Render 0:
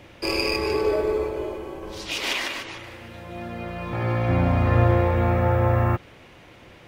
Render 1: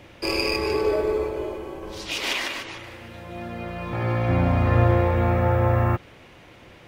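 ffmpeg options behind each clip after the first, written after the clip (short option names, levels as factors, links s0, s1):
-af anull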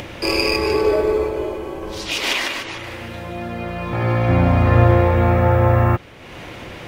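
-af "acompressor=mode=upward:threshold=0.0316:ratio=2.5,volume=1.88"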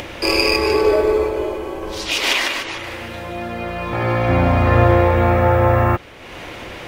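-af "equalizer=f=140:t=o:w=1.6:g=-6.5,volume=1.41"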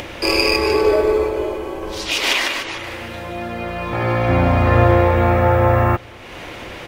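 -filter_complex "[0:a]asplit=2[s0][s1];[s1]adelay=250.7,volume=0.0398,highshelf=f=4000:g=-5.64[s2];[s0][s2]amix=inputs=2:normalize=0"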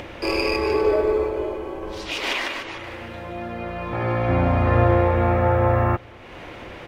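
-af "highshelf=f=3800:g=-11,volume=0.631"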